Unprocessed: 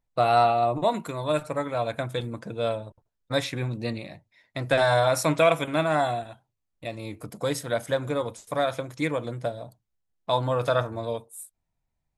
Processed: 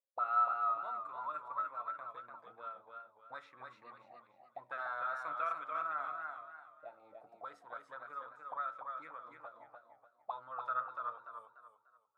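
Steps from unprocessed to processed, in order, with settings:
envelope filter 550–1,300 Hz, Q 19, up, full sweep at −24 dBFS
hum removal 56.39 Hz, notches 11
feedback echo with a swinging delay time 293 ms, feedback 33%, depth 70 cents, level −4.5 dB
level +1.5 dB

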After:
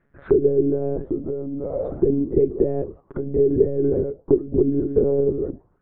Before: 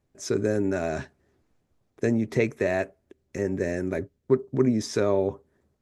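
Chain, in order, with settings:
parametric band 280 Hz +5 dB 0.3 octaves
downward compressor 10 to 1, threshold −27 dBFS, peak gain reduction 13.5 dB
delay with pitch and tempo change per echo 745 ms, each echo −3 semitones, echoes 2, each echo −6 dB
one-pitch LPC vocoder at 8 kHz 140 Hz
envelope-controlled low-pass 410–1,700 Hz down, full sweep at −31 dBFS
level +6 dB

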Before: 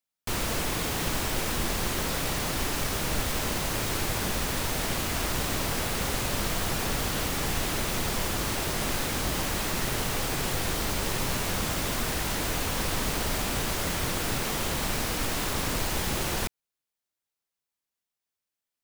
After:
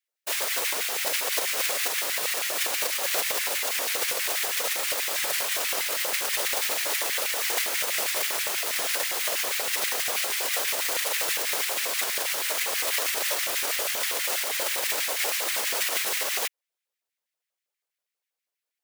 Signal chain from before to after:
spectral envelope flattened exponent 0.3
random phases in short frames
auto-filter high-pass square 6.2 Hz 520–2,000 Hz

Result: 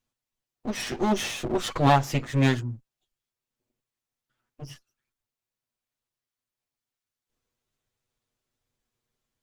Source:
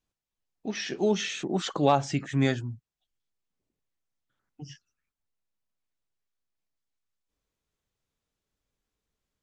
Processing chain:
lower of the sound and its delayed copy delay 8.2 ms
level +3 dB

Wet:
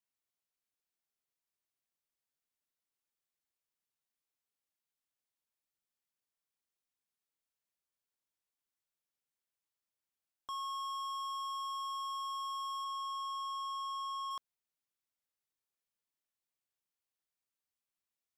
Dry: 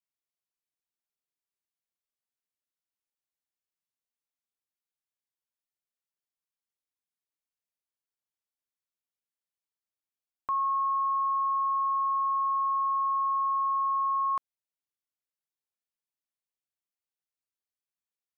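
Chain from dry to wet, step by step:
0:12.84–0:14.29: high-pass filter 860 Hz → 980 Hz 12 dB per octave
soft clipping −39 dBFS, distortion −9 dB

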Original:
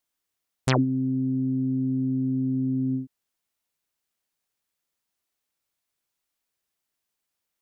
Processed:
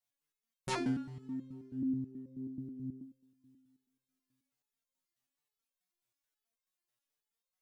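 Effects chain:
multi-voice chorus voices 6, 0.38 Hz, delay 22 ms, depth 4.3 ms
coupled-rooms reverb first 0.53 s, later 2.8 s, from −18 dB, DRR 9 dB
step-sequenced resonator 9.3 Hz 120–530 Hz
level +7 dB

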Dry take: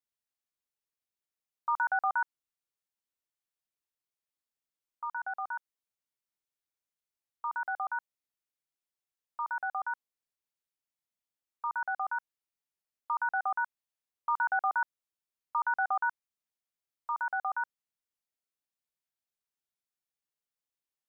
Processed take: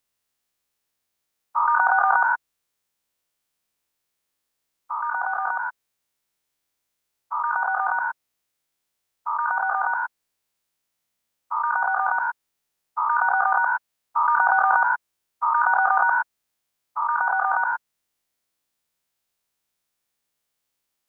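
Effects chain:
every bin's largest magnitude spread in time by 240 ms
level +8 dB

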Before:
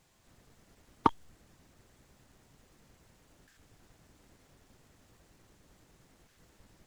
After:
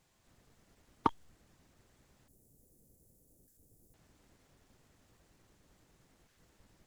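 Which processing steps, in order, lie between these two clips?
0:02.28–0:03.94: drawn EQ curve 500 Hz 0 dB, 1,100 Hz −21 dB, 2,900 Hz −22 dB, 11,000 Hz +11 dB
level −4.5 dB

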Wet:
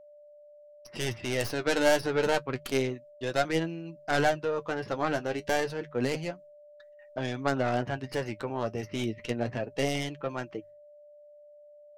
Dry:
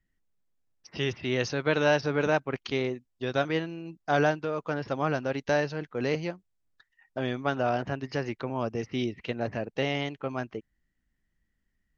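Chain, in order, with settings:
stylus tracing distortion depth 0.18 ms
noise gate with hold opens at −55 dBFS
flanger 0.29 Hz, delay 5.6 ms, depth 4.8 ms, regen +43%
mains-hum notches 50/100/150 Hz
steady tone 590 Hz −54 dBFS
level +3.5 dB

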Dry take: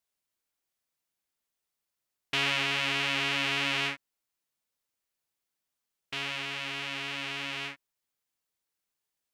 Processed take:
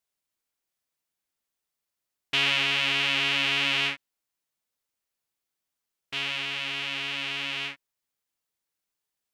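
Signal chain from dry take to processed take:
dynamic equaliser 3,100 Hz, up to +6 dB, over −42 dBFS, Q 1.2

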